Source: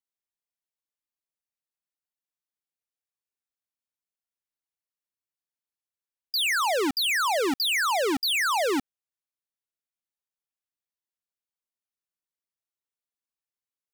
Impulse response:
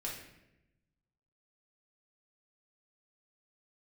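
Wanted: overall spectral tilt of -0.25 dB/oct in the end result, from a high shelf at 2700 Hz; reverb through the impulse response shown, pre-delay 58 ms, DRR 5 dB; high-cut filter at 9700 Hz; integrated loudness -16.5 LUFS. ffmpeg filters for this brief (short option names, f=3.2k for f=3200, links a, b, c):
-filter_complex "[0:a]lowpass=9.7k,highshelf=f=2.7k:g=3.5,asplit=2[a][b];[1:a]atrim=start_sample=2205,adelay=58[c];[b][c]afir=irnorm=-1:irlink=0,volume=-5.5dB[d];[a][d]amix=inputs=2:normalize=0,volume=5dB"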